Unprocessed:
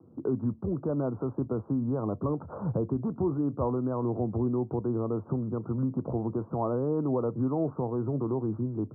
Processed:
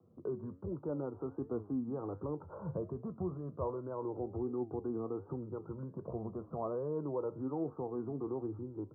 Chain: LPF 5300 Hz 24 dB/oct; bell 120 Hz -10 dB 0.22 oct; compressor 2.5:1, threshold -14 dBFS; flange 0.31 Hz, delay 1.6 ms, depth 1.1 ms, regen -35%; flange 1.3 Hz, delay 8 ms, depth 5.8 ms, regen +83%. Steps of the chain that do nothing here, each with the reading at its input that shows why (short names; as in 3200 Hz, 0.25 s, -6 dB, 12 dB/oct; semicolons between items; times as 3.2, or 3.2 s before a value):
LPF 5300 Hz: input band ends at 1200 Hz; compressor, threshold -14 dBFS: input peak -16.5 dBFS